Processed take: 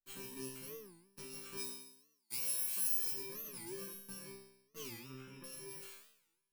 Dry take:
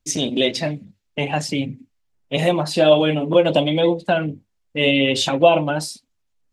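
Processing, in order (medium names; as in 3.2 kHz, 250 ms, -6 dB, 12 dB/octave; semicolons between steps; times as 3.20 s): bit-reversed sample order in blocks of 64 samples; two-slope reverb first 0.55 s, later 2.3 s, from -21 dB, DRR 17.5 dB; compression, threshold -20 dBFS, peak gain reduction 12 dB; valve stage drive 17 dB, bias 0.55; 1.57–3.12 s: tilt EQ +3.5 dB/octave; 4.91–5.44 s: Savitzky-Golay filter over 25 samples; chord resonator C3 fifth, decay 0.79 s; warped record 45 rpm, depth 250 cents; trim -1 dB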